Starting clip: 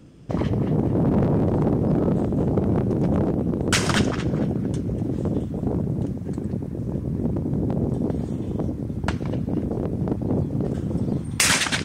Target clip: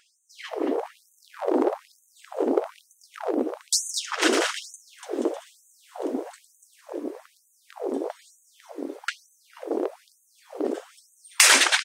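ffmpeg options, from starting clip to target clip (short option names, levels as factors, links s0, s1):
-filter_complex "[0:a]asplit=3[s0][s1][s2];[s0]afade=t=out:st=4.21:d=0.02[s3];[s1]aecho=1:1:290|478.5|601|680.7|732.4:0.631|0.398|0.251|0.158|0.1,afade=t=in:st=4.21:d=0.02,afade=t=out:st=6.8:d=0.02[s4];[s2]afade=t=in:st=6.8:d=0.02[s5];[s3][s4][s5]amix=inputs=3:normalize=0,afftfilt=real='re*gte(b*sr/1024,250*pow(6200/250,0.5+0.5*sin(2*PI*1.1*pts/sr)))':imag='im*gte(b*sr/1024,250*pow(6200/250,0.5+0.5*sin(2*PI*1.1*pts/sr)))':win_size=1024:overlap=0.75,volume=1.5"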